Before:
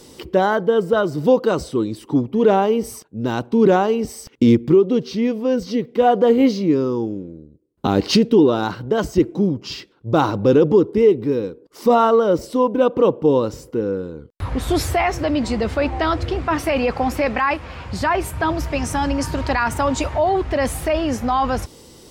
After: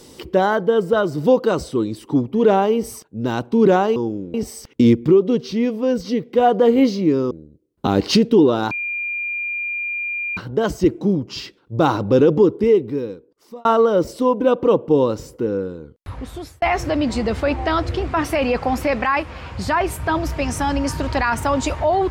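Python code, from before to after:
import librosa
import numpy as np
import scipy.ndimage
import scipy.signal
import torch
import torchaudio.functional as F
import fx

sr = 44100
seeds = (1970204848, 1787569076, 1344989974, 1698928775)

y = fx.edit(x, sr, fx.move(start_s=6.93, length_s=0.38, to_s=3.96),
    fx.insert_tone(at_s=8.71, length_s=1.66, hz=2400.0, db=-22.0),
    fx.fade_out_span(start_s=10.94, length_s=1.05),
    fx.fade_out_span(start_s=13.91, length_s=1.05), tone=tone)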